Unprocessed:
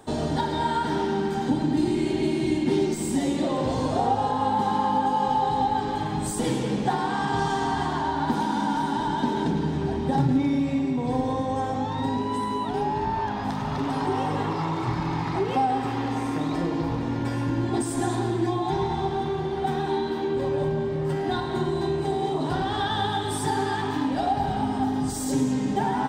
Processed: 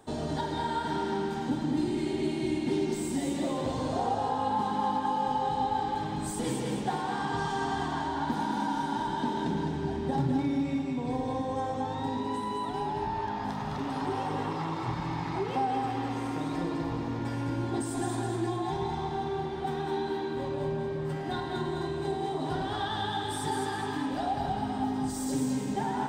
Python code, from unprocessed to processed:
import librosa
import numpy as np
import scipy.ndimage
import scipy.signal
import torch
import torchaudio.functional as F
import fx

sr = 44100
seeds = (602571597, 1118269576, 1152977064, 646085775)

y = fx.echo_thinned(x, sr, ms=208, feedback_pct=39, hz=420.0, wet_db=-4.5)
y = y * librosa.db_to_amplitude(-6.5)